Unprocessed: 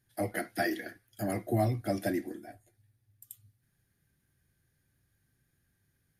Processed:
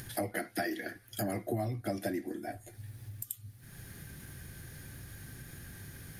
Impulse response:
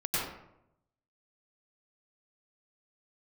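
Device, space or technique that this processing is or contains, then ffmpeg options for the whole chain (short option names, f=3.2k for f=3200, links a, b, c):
upward and downward compression: -af "acompressor=mode=upward:threshold=-47dB:ratio=2.5,acompressor=threshold=-48dB:ratio=4,volume=13dB"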